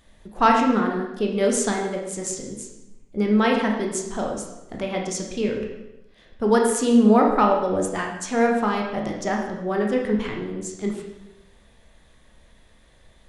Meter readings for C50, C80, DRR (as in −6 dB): 3.5 dB, 6.0 dB, 0.0 dB